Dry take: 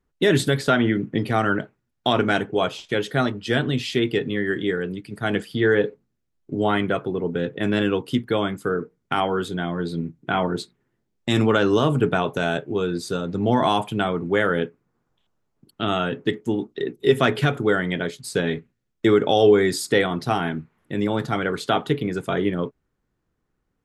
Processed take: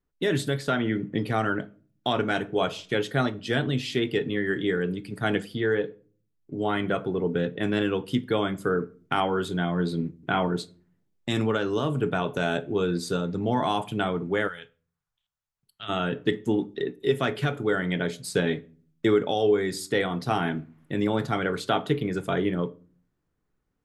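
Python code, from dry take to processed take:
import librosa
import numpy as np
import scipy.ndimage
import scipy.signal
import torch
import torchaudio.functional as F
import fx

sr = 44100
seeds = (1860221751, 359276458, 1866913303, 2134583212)

y = fx.room_shoebox(x, sr, seeds[0], volume_m3=330.0, walls='furnished', distance_m=0.34)
y = fx.rider(y, sr, range_db=4, speed_s=0.5)
y = fx.tone_stack(y, sr, knobs='10-0-10', at=(14.47, 15.88), fade=0.02)
y = F.gain(torch.from_numpy(y), -4.5).numpy()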